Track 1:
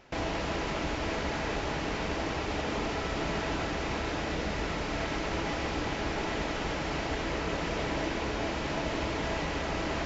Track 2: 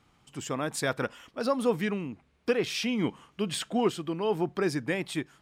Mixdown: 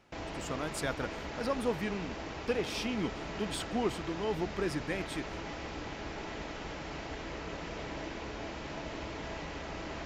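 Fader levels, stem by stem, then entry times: −8.5, −6.0 decibels; 0.00, 0.00 seconds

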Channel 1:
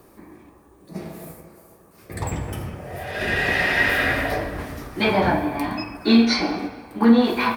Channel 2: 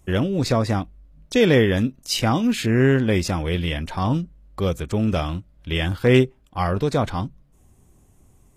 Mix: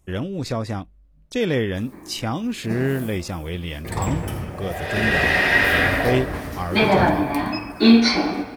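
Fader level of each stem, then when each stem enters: +2.5, −5.5 decibels; 1.75, 0.00 seconds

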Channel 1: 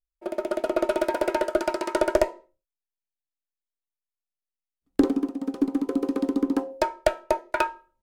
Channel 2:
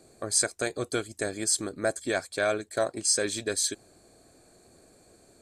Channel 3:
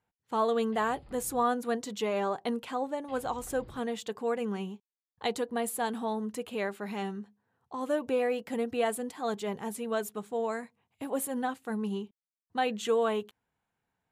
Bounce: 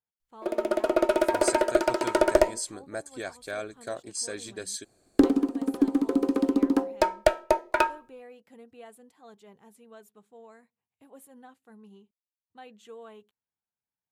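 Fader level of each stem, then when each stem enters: +1.0, −8.0, −18.5 decibels; 0.20, 1.10, 0.00 seconds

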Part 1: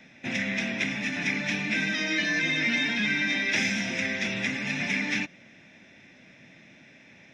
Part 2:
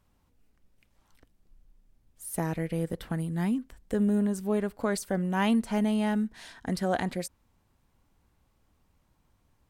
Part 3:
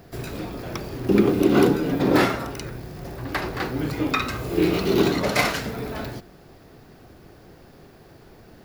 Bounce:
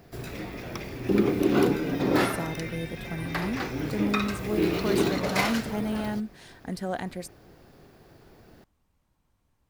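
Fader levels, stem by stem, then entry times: −16.5, −3.5, −5.0 decibels; 0.00, 0.00, 0.00 seconds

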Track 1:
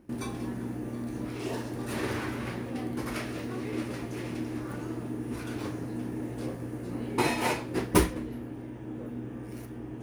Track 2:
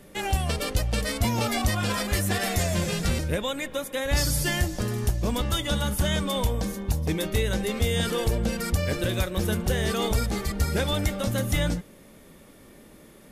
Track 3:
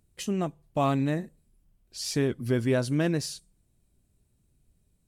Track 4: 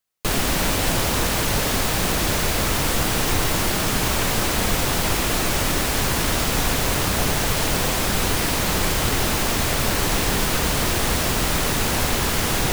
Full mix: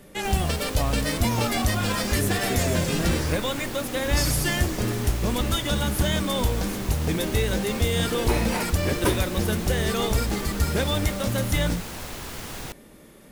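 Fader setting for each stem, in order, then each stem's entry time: −1.0, +1.0, −5.0, −14.5 decibels; 1.10, 0.00, 0.00, 0.00 seconds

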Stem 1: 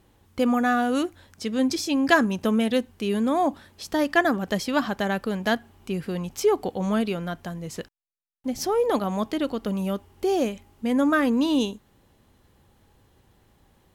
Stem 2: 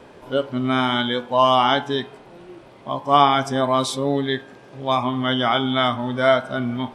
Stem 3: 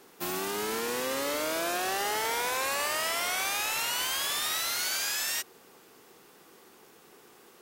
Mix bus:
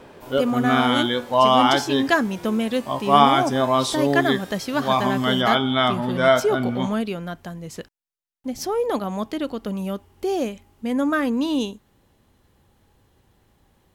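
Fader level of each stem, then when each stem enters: −0.5, 0.0, −16.5 decibels; 0.00, 0.00, 0.00 seconds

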